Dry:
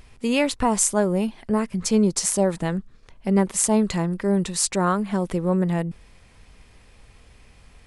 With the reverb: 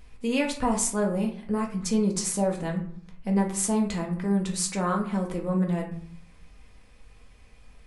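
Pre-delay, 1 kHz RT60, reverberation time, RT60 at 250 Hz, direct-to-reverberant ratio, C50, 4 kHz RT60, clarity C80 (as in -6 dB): 4 ms, 0.55 s, 0.55 s, 0.80 s, 0.0 dB, 8.5 dB, 0.35 s, 13.0 dB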